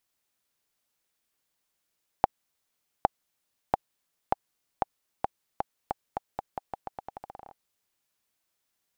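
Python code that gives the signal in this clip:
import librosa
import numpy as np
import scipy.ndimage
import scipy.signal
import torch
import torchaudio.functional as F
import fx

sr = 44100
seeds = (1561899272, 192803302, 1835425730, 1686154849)

y = fx.bouncing_ball(sr, first_gap_s=0.81, ratio=0.85, hz=793.0, decay_ms=20.0, level_db=-5.0)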